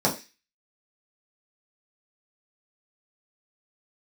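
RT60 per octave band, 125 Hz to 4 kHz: 0.20, 0.25, 0.25, 0.25, 0.40, 0.45 seconds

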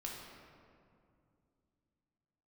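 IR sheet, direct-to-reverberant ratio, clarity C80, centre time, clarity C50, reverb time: −2.5 dB, 3.0 dB, 93 ms, 1.0 dB, 2.4 s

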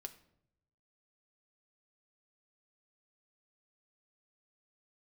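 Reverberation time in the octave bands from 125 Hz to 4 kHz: 1.3, 0.95, 0.85, 0.65, 0.55, 0.45 seconds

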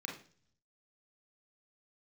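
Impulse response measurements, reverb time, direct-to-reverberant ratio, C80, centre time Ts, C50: 0.45 s, −0.5 dB, 13.0 dB, 27 ms, 7.0 dB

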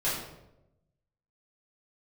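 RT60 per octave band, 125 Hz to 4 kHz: 1.3, 1.1, 1.0, 0.75, 0.65, 0.55 seconds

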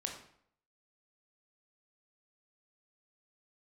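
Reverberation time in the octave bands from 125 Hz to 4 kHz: 0.65, 0.65, 0.65, 0.65, 0.55, 0.50 seconds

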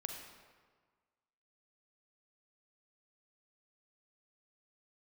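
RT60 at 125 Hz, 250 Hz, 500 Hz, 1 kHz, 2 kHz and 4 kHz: 1.6, 1.5, 1.5, 1.6, 1.3, 1.0 seconds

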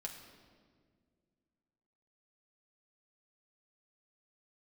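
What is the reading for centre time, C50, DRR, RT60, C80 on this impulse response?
38 ms, 6.5 dB, 1.0 dB, 1.9 s, 7.5 dB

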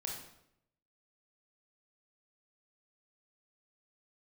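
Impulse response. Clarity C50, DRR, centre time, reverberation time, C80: 3.0 dB, −1.0 dB, 41 ms, 0.75 s, 6.5 dB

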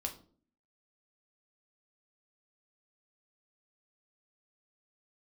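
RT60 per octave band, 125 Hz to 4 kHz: 0.60, 0.70, 0.55, 0.40, 0.30, 0.30 seconds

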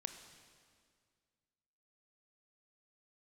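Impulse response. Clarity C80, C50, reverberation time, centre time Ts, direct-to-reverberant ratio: 9.5 dB, 8.5 dB, 2.0 s, 25 ms, 7.5 dB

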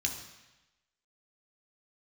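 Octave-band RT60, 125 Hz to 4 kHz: 1.0, 1.0, 1.0, 1.1, 1.1, 1.1 seconds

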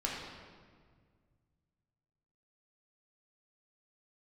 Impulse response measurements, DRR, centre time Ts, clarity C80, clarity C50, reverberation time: −4.0 dB, 82 ms, 2.5 dB, 0.5 dB, 1.8 s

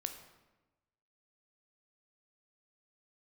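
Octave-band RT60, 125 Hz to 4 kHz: 1.3, 1.2, 1.2, 1.1, 0.95, 0.75 seconds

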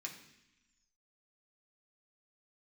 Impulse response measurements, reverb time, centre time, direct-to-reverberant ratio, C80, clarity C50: 0.85 s, 21 ms, −2.0 dB, 10.5 dB, 8.5 dB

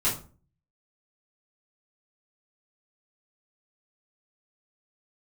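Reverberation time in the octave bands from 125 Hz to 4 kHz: 0.65, 0.55, 0.40, 0.35, 0.30, 0.25 seconds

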